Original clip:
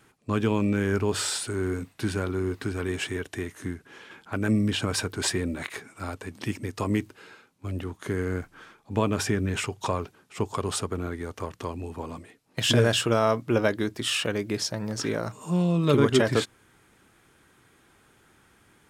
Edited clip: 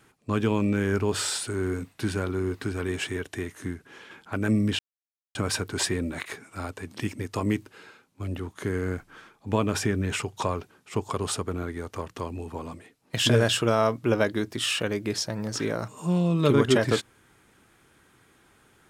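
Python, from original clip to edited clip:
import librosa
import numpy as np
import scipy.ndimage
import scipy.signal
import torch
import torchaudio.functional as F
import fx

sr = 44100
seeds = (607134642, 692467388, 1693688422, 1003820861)

y = fx.edit(x, sr, fx.insert_silence(at_s=4.79, length_s=0.56), tone=tone)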